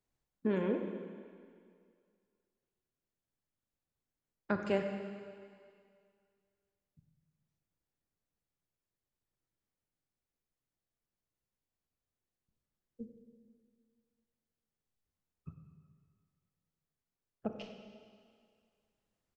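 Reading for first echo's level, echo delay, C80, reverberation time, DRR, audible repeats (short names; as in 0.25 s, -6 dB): -15.0 dB, 96 ms, 6.0 dB, 2.1 s, 4.5 dB, 1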